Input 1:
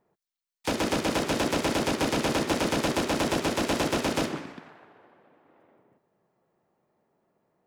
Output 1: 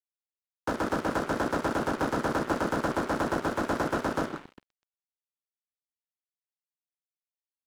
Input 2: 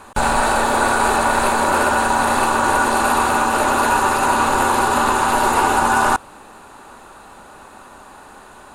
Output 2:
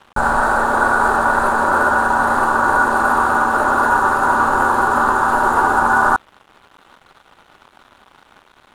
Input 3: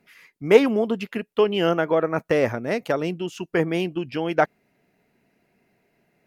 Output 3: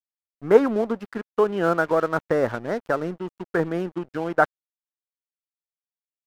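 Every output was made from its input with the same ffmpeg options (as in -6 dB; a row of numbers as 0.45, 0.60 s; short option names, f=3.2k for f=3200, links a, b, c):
-af "highshelf=f=1.9k:t=q:w=3:g=-8.5,aeval=exprs='sgn(val(0))*max(abs(val(0))-0.0133,0)':c=same,volume=-1dB"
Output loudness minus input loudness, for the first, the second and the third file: -2.5, +1.5, -1.0 LU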